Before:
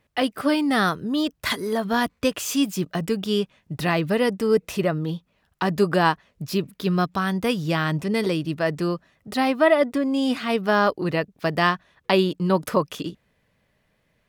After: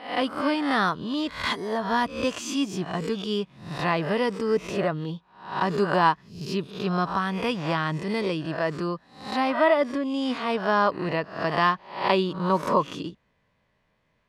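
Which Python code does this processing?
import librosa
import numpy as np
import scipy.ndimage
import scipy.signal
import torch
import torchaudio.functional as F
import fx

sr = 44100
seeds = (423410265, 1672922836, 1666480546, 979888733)

y = fx.spec_swells(x, sr, rise_s=0.51)
y = scipy.signal.sosfilt(scipy.signal.butter(2, 6400.0, 'lowpass', fs=sr, output='sos'), y)
y = fx.peak_eq(y, sr, hz=1000.0, db=7.0, octaves=0.48)
y = y * librosa.db_to_amplitude(-5.0)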